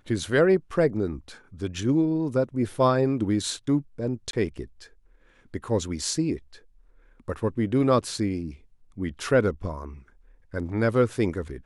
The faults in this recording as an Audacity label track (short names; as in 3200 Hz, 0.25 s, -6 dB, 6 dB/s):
4.310000	4.330000	gap 22 ms